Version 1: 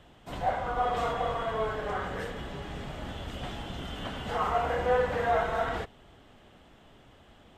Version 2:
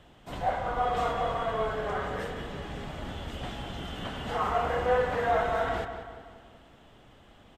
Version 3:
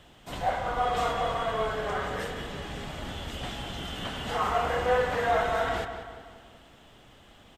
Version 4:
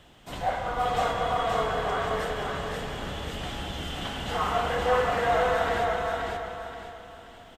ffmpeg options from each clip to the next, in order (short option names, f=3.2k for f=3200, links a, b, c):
-filter_complex "[0:a]asplit=2[a][b];[b]adelay=187,lowpass=f=3.8k:p=1,volume=-9dB,asplit=2[c][d];[d]adelay=187,lowpass=f=3.8k:p=1,volume=0.51,asplit=2[e][f];[f]adelay=187,lowpass=f=3.8k:p=1,volume=0.51,asplit=2[g][h];[h]adelay=187,lowpass=f=3.8k:p=1,volume=0.51,asplit=2[i][j];[j]adelay=187,lowpass=f=3.8k:p=1,volume=0.51,asplit=2[k][l];[l]adelay=187,lowpass=f=3.8k:p=1,volume=0.51[m];[a][c][e][g][i][k][m]amix=inputs=7:normalize=0"
-af "highshelf=f=2.4k:g=7.5"
-af "aecho=1:1:526|1052|1578|2104|2630:0.708|0.248|0.0867|0.0304|0.0106"